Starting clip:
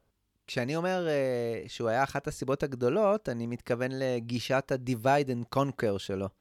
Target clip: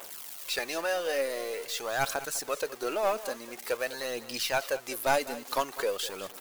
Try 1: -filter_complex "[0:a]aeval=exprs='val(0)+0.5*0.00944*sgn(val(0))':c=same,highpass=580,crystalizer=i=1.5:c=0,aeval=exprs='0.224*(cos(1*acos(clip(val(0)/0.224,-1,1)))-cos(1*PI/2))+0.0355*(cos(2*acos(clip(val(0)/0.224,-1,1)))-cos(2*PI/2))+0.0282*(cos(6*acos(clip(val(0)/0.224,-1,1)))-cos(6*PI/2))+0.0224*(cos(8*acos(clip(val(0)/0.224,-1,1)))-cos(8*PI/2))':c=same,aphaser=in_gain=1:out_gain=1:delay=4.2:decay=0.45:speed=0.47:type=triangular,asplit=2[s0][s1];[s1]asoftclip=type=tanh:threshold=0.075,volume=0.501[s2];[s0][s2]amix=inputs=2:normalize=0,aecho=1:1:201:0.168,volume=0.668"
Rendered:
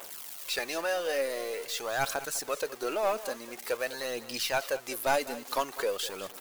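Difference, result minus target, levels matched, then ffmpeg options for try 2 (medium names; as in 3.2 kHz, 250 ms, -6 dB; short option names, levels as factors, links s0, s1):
saturation: distortion +16 dB
-filter_complex "[0:a]aeval=exprs='val(0)+0.5*0.00944*sgn(val(0))':c=same,highpass=580,crystalizer=i=1.5:c=0,aeval=exprs='0.224*(cos(1*acos(clip(val(0)/0.224,-1,1)))-cos(1*PI/2))+0.0355*(cos(2*acos(clip(val(0)/0.224,-1,1)))-cos(2*PI/2))+0.0282*(cos(6*acos(clip(val(0)/0.224,-1,1)))-cos(6*PI/2))+0.0224*(cos(8*acos(clip(val(0)/0.224,-1,1)))-cos(8*PI/2))':c=same,aphaser=in_gain=1:out_gain=1:delay=4.2:decay=0.45:speed=0.47:type=triangular,asplit=2[s0][s1];[s1]asoftclip=type=tanh:threshold=0.299,volume=0.501[s2];[s0][s2]amix=inputs=2:normalize=0,aecho=1:1:201:0.168,volume=0.668"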